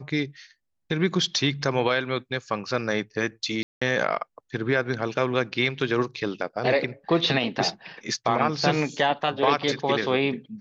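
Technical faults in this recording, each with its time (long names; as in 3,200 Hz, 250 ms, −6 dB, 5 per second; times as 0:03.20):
0:03.63–0:03.81: drop-out 185 ms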